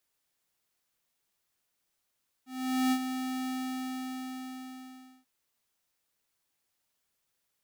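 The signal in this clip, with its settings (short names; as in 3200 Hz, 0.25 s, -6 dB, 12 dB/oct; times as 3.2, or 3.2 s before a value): ADSR square 258 Hz, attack 0.456 s, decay 66 ms, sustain -8.5 dB, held 1.02 s, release 1.77 s -25.5 dBFS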